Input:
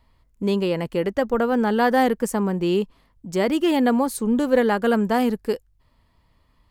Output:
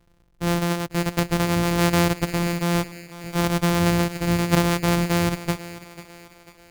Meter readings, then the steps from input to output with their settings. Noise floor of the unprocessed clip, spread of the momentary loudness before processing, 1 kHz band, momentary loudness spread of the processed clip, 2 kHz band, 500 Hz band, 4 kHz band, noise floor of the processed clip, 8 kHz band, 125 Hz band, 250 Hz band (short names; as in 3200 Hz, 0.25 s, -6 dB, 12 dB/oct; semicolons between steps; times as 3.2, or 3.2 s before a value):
-63 dBFS, 8 LU, -2.5 dB, 10 LU, +1.5 dB, -5.5 dB, +5.0 dB, -59 dBFS, +6.5 dB, +10.0 dB, -1.5 dB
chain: sample sorter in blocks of 256 samples; thinning echo 0.493 s, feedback 49%, high-pass 190 Hz, level -14.5 dB; gain -1 dB